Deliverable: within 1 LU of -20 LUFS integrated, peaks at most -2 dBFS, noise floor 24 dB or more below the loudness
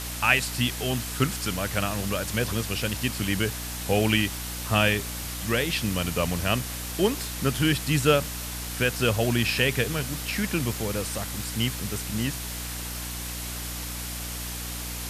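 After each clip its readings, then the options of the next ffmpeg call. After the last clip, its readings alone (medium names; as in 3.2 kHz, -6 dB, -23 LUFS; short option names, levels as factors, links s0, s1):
hum 60 Hz; highest harmonic 300 Hz; hum level -35 dBFS; noise floor -34 dBFS; noise floor target -51 dBFS; loudness -26.5 LUFS; peak level -6.0 dBFS; loudness target -20.0 LUFS
-> -af "bandreject=f=60:t=h:w=4,bandreject=f=120:t=h:w=4,bandreject=f=180:t=h:w=4,bandreject=f=240:t=h:w=4,bandreject=f=300:t=h:w=4"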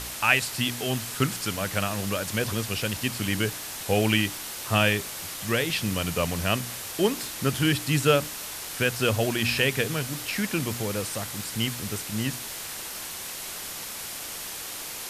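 hum not found; noise floor -37 dBFS; noise floor target -51 dBFS
-> -af "afftdn=nr=14:nf=-37"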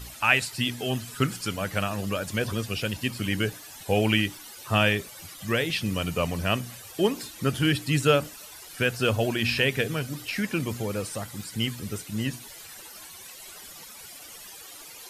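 noise floor -45 dBFS; noise floor target -51 dBFS
-> -af "afftdn=nr=6:nf=-45"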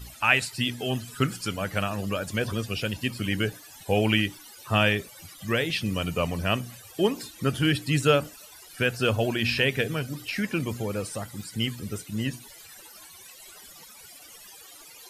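noise floor -48 dBFS; noise floor target -51 dBFS
-> -af "afftdn=nr=6:nf=-48"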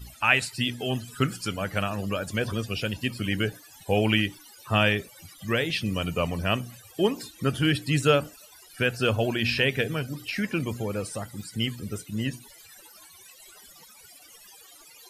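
noise floor -52 dBFS; loudness -27.0 LUFS; peak level -6.5 dBFS; loudness target -20.0 LUFS
-> -af "volume=2.24,alimiter=limit=0.794:level=0:latency=1"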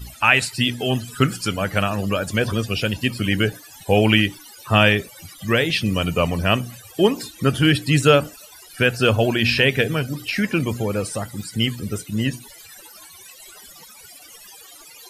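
loudness -20.0 LUFS; peak level -2.0 dBFS; noise floor -45 dBFS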